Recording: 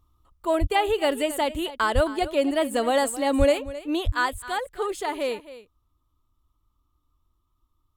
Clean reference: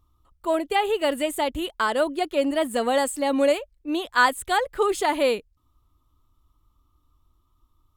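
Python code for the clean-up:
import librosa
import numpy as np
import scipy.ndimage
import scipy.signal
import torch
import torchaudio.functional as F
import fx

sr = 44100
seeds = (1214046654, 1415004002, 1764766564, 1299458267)

y = fx.fix_deplosive(x, sr, at_s=(0.6, 1.94, 3.38, 4.05))
y = fx.fix_echo_inverse(y, sr, delay_ms=265, level_db=-15.5)
y = fx.gain(y, sr, db=fx.steps((0.0, 0.0), (4.14, 6.0)))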